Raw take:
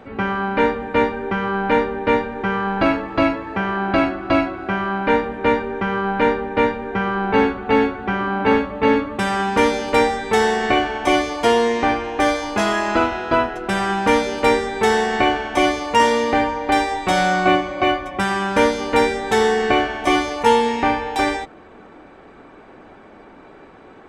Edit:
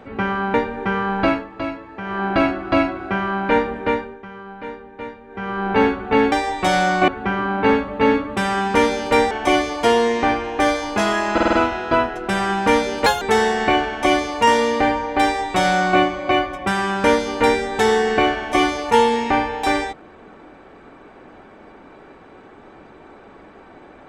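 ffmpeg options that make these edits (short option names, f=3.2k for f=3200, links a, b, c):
-filter_complex "[0:a]asplit=15[a][b][c][d][e][f][g][h][i][j][k][l][m][n][o];[a]atrim=end=0.542[p];[b]atrim=start=2.118:end=3.05,asetpts=PTS-STARTPTS,afade=t=out:st=0.722:d=0.21:silence=0.354813[q];[c]atrim=start=3.05:end=3.6,asetpts=PTS-STARTPTS,volume=-9dB[r];[d]atrim=start=3.6:end=5.77,asetpts=PTS-STARTPTS,afade=t=in:d=0.21:silence=0.354813,afade=t=out:st=1.74:d=0.43:silence=0.177828[s];[e]atrim=start=5.77:end=6.86,asetpts=PTS-STARTPTS,volume=-15dB[t];[f]atrim=start=6.86:end=7.902,asetpts=PTS-STARTPTS,afade=t=in:d=0.43:silence=0.177828[u];[g]atrim=start=16.758:end=17.522[v];[h]atrim=start=7.898:end=10.132[w];[i]atrim=start=10.908:end=12.982[x];[j]atrim=start=12.928:end=12.982[y];[k]atrim=start=12.928:end=12.982[z];[l]atrim=start=12.928:end=12.982[aa];[m]atrim=start=12.928:end=14.464[ab];[n]atrim=start=14.46:end=14.74,asetpts=PTS-STARTPTS,asetrate=79380,aresample=44100[ac];[o]atrim=start=14.736[ad];[q][r][s][t][u]concat=n=5:v=0:a=1[ae];[p][ae]acrossfade=d=0.004:c1=hsin:c2=hsin[af];[af][v]acrossfade=d=0.004:c1=hsin:c2=hsin[ag];[ag][w]acrossfade=d=0.004:c1=hsin:c2=hsin[ah];[ah][x]acrossfade=d=0.004:c1=hsin:c2=hsin[ai];[ai][y]acrossfade=d=0.004:c1=hsin:c2=hsin[aj];[aj][z]acrossfade=d=0.004:c1=hsin:c2=hsin[ak];[ak][aa]acrossfade=d=0.004:c1=hsin:c2=hsin[al];[al][ab]acrossfade=d=0.004:c1=hsin:c2=hsin[am];[am][ac]acrossfade=d=0.004:c1=hsin:c2=hsin[an];[an][ad]acrossfade=d=0.004:c1=hsin:c2=hsin"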